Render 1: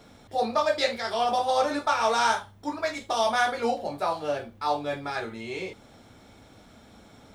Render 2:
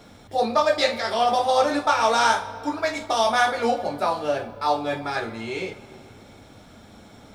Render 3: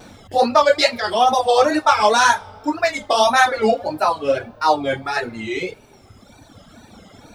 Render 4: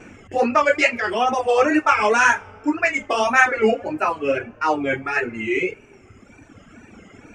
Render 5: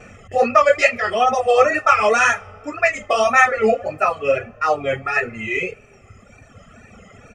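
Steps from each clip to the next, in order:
reverberation RT60 2.9 s, pre-delay 10 ms, DRR 12 dB; trim +4 dB
wow and flutter 110 cents; reverb removal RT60 2 s; trim +6.5 dB
FFT filter 170 Hz 0 dB, 390 Hz +6 dB, 580 Hz -3 dB, 890 Hz -4 dB, 1.4 kHz +3 dB, 2.7 kHz +8 dB, 3.8 kHz -19 dB, 6.8 kHz +1 dB, 12 kHz -18 dB; trim -2 dB
comb 1.6 ms, depth 78%

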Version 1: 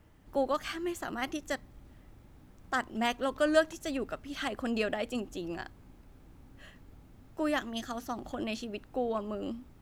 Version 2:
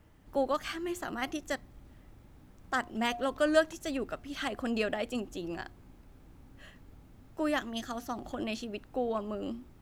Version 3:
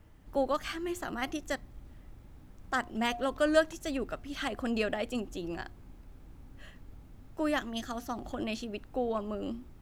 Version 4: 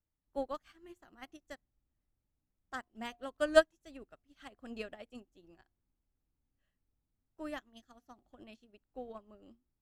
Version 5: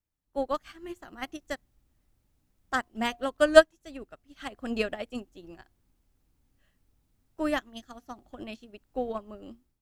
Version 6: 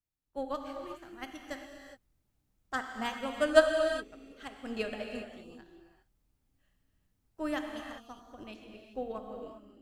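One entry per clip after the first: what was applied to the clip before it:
de-hum 356.9 Hz, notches 2
bass shelf 65 Hz +7.5 dB
upward expansion 2.5:1, over -43 dBFS; trim +2.5 dB
level rider gain up to 13.5 dB
gated-style reverb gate 430 ms flat, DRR 3 dB; trim -6.5 dB

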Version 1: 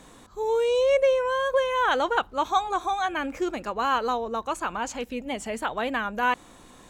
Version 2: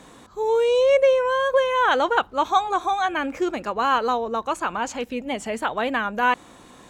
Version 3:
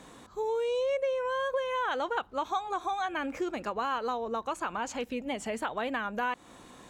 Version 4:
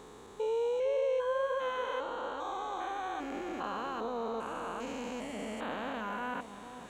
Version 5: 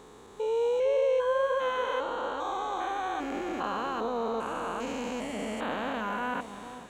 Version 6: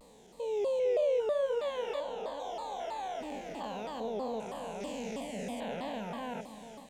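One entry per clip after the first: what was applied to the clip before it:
high-pass 88 Hz 6 dB/octave; treble shelf 6.2 kHz -5 dB; trim +4 dB
compression 3:1, threshold -26 dBFS, peak gain reduction 10 dB; trim -4 dB
spectrogram pixelated in time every 400 ms; echo whose repeats swap between lows and highs 454 ms, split 930 Hz, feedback 53%, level -8.5 dB
level rider gain up to 5 dB
static phaser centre 340 Hz, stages 6; vibrato with a chosen wave saw down 3.1 Hz, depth 250 cents; trim -2.5 dB

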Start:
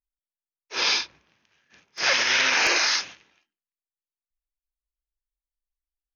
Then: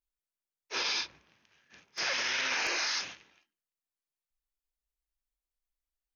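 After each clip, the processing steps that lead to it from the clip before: peak limiter -21.5 dBFS, peak gain reduction 11.5 dB; trim -1 dB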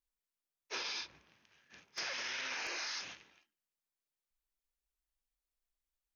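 compression, threshold -36 dBFS, peak gain reduction 8 dB; trim -1.5 dB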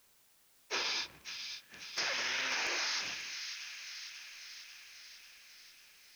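word length cut 12-bit, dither triangular; feedback echo behind a high-pass 542 ms, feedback 65%, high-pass 2.1 kHz, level -7 dB; trim +5 dB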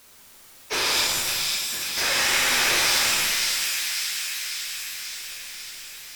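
in parallel at -11 dB: sine folder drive 13 dB, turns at -22 dBFS; on the sum: pitch-shifted reverb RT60 1.5 s, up +7 st, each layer -2 dB, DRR -0.5 dB; trim +4.5 dB

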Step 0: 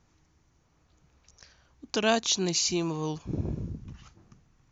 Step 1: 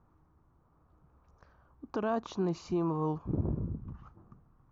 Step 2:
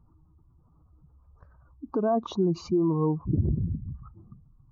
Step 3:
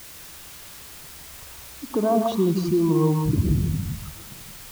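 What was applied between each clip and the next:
FFT filter 700 Hz 0 dB, 1.2 kHz +4 dB, 2 kHz -15 dB, 7.7 kHz -30 dB; peak limiter -22 dBFS, peak gain reduction 8.5 dB
spectral contrast enhancement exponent 1.9; trim +7 dB
in parallel at -6.5 dB: word length cut 6-bit, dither triangular; on the sum: reverberation, pre-delay 3 ms, DRR 5 dB

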